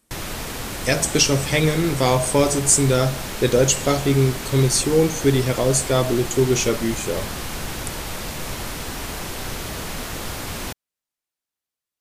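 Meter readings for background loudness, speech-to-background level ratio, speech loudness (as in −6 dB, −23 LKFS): −29.5 LKFS, 10.0 dB, −19.5 LKFS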